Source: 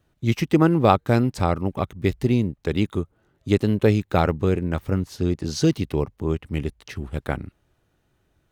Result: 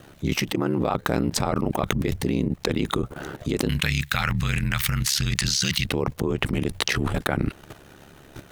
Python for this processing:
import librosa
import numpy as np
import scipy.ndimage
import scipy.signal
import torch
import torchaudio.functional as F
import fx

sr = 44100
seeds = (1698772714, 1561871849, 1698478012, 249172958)

y = fx.level_steps(x, sr, step_db=13)
y = fx.curve_eq(y, sr, hz=(110.0, 400.0, 1900.0), db=(0, -25, 7), at=(3.69, 5.86))
y = y * np.sin(2.0 * np.pi * 35.0 * np.arange(len(y)) / sr)
y = fx.low_shelf(y, sr, hz=110.0, db=-9.5)
y = fx.env_flatten(y, sr, amount_pct=100)
y = F.gain(torch.from_numpy(y), -4.5).numpy()